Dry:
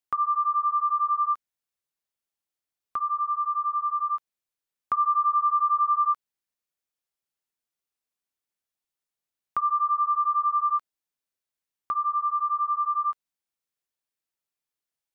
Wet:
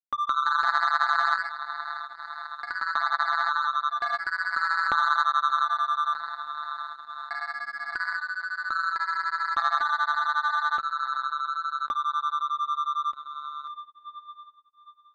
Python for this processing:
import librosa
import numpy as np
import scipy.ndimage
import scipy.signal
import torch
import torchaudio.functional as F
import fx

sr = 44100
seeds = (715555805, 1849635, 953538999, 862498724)

y = x + 0.59 * np.pad(x, (int(3.6 * sr / 1000.0), 0))[:len(x)]
y = fx.echo_diffused(y, sr, ms=626, feedback_pct=67, wet_db=-15)
y = fx.leveller(y, sr, passes=1)
y = fx.echo_pitch(y, sr, ms=181, semitones=2, count=3, db_per_echo=-3.0)
y = fx.hum_notches(y, sr, base_hz=60, count=3)
y = fx.power_curve(y, sr, exponent=3.0)
y = fx.lowpass(y, sr, hz=1300.0, slope=6)
y = fx.env_flatten(y, sr, amount_pct=70)
y = y * 10.0 ** (3.5 / 20.0)